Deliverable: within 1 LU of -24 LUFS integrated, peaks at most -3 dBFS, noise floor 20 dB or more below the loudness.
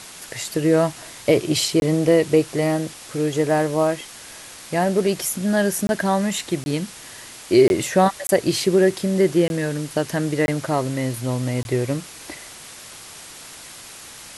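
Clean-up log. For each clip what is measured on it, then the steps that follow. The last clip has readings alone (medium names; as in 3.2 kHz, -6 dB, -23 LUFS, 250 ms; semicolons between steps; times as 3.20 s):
dropouts 8; longest dropout 21 ms; noise floor -40 dBFS; noise floor target -41 dBFS; loudness -20.5 LUFS; peak level -4.0 dBFS; loudness target -24.0 LUFS
-> interpolate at 1.80/5.87/6.64/7.68/8.27/9.48/10.46/11.63 s, 21 ms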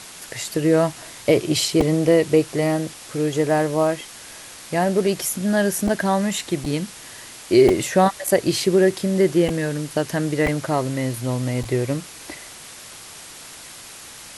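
dropouts 0; noise floor -40 dBFS; noise floor target -41 dBFS
-> noise reduction 6 dB, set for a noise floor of -40 dBFS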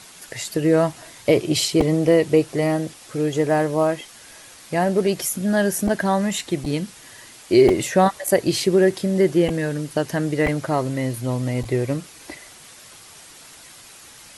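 noise floor -45 dBFS; loudness -20.5 LUFS; peak level -4.0 dBFS; loudness target -24.0 LUFS
-> trim -3.5 dB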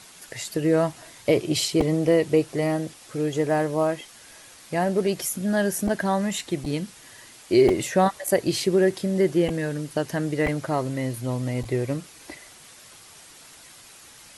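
loudness -24.0 LUFS; peak level -7.5 dBFS; noise floor -48 dBFS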